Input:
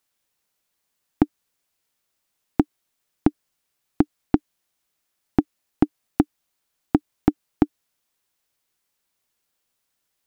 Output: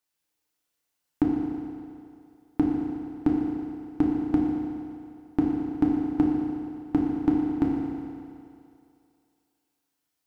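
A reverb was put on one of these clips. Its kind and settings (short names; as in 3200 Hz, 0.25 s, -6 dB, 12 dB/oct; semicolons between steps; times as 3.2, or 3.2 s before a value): FDN reverb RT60 2.5 s, low-frequency decay 0.8×, high-frequency decay 0.95×, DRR -3.5 dB; gain -9 dB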